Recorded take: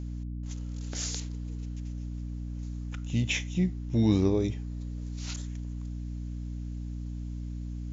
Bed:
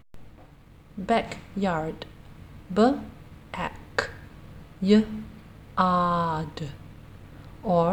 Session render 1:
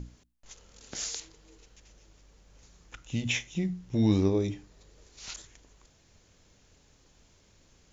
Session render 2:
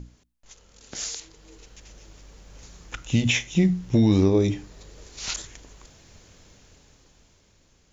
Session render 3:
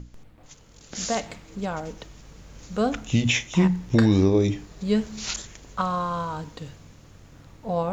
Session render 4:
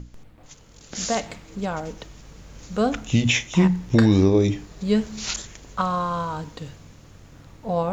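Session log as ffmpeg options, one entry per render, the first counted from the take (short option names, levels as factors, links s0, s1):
-af "bandreject=f=60:t=h:w=6,bandreject=f=120:t=h:w=6,bandreject=f=180:t=h:w=6,bandreject=f=240:t=h:w=6,bandreject=f=300:t=h:w=6"
-af "alimiter=limit=0.0891:level=0:latency=1:release=294,dynaudnorm=f=230:g=13:m=3.55"
-filter_complex "[1:a]volume=0.631[s0];[0:a][s0]amix=inputs=2:normalize=0"
-af "volume=1.26"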